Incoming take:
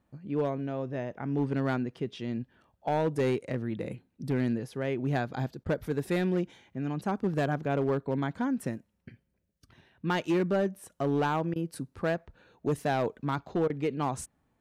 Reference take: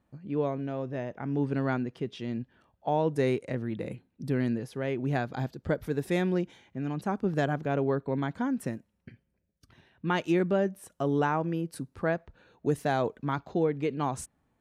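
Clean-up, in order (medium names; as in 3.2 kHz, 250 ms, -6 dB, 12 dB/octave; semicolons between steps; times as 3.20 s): clip repair -21.5 dBFS; interpolate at 5.64/11.54/13.68 s, 17 ms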